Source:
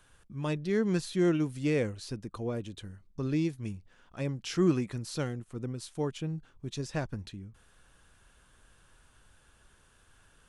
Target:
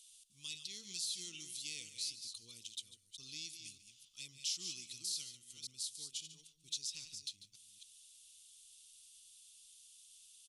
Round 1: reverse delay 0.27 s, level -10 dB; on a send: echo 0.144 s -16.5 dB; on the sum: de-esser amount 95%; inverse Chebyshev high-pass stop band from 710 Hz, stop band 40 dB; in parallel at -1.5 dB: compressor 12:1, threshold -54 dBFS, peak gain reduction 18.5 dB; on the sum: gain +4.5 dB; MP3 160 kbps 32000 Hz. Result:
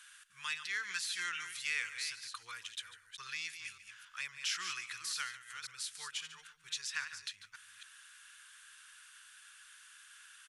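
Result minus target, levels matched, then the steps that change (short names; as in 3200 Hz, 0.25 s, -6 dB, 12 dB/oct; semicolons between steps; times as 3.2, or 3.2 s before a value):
2000 Hz band +15.0 dB
change: inverse Chebyshev high-pass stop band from 1800 Hz, stop band 40 dB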